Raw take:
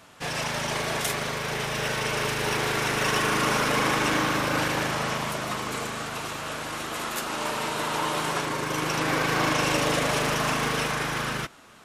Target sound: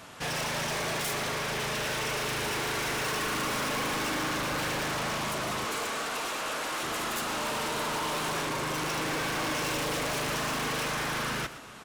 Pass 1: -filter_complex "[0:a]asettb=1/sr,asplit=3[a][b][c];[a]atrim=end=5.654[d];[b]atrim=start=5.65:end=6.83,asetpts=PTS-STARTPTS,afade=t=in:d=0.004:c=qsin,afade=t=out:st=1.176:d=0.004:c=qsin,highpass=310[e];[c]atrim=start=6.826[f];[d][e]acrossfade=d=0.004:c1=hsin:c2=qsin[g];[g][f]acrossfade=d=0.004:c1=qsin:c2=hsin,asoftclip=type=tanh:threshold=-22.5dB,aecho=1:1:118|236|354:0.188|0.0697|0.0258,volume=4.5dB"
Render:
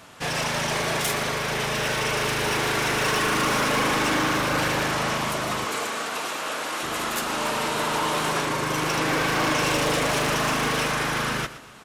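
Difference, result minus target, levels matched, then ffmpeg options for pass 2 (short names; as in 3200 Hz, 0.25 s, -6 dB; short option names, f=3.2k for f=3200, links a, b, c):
soft clip: distortion -8 dB
-filter_complex "[0:a]asettb=1/sr,asplit=3[a][b][c];[a]atrim=end=5.654[d];[b]atrim=start=5.65:end=6.83,asetpts=PTS-STARTPTS,afade=t=in:d=0.004:c=qsin,afade=t=out:st=1.176:d=0.004:c=qsin,highpass=310[e];[c]atrim=start=6.826[f];[d][e]acrossfade=d=0.004:c1=hsin:c2=qsin[g];[g][f]acrossfade=d=0.004:c1=qsin:c2=hsin,asoftclip=type=tanh:threshold=-34dB,aecho=1:1:118|236|354:0.188|0.0697|0.0258,volume=4.5dB"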